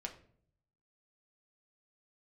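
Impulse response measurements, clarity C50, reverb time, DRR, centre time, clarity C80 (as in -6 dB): 12.0 dB, 0.55 s, 1.5 dB, 12 ms, 15.5 dB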